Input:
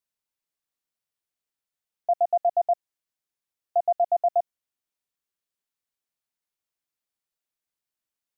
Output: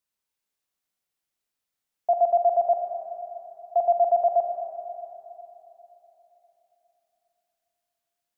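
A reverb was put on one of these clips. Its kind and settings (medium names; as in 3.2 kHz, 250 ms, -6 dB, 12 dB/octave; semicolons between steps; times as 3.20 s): Schroeder reverb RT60 3.5 s, combs from 31 ms, DRR 1.5 dB; trim +1.5 dB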